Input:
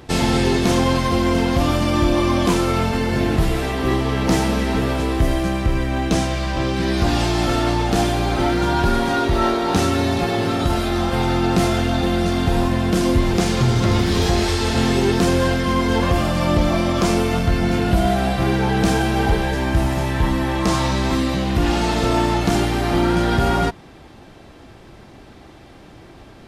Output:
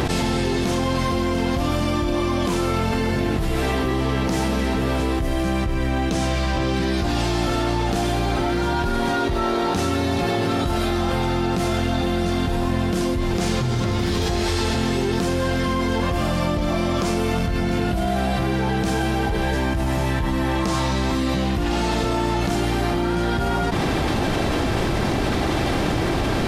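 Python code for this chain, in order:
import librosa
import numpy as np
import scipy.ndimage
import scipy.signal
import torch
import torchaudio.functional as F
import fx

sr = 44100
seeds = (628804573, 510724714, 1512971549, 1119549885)

y = fx.env_flatten(x, sr, amount_pct=100)
y = F.gain(torch.from_numpy(y), -9.0).numpy()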